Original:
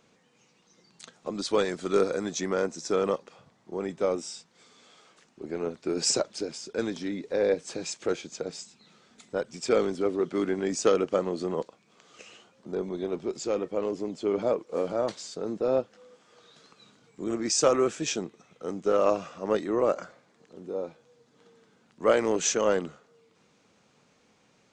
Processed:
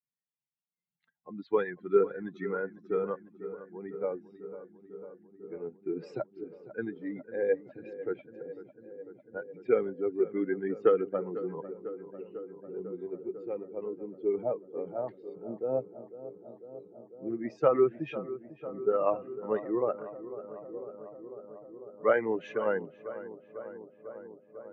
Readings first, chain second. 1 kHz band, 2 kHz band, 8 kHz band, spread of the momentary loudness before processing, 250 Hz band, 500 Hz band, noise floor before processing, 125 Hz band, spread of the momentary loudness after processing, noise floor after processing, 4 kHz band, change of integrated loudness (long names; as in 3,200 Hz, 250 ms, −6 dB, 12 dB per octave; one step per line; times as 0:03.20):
−4.5 dB, −3.5 dB, below −40 dB, 13 LU, −5.0 dB, −3.0 dB, −65 dBFS, −5.5 dB, 19 LU, −71 dBFS, below −20 dB, −4.5 dB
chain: spectral dynamics exaggerated over time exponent 2
loudspeaker in its box 120–2,200 Hz, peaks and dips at 130 Hz +7 dB, 190 Hz −3 dB, 410 Hz +5 dB, 1,600 Hz +5 dB
feedback echo with a low-pass in the loop 498 ms, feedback 82%, low-pass 1,700 Hz, level −14 dB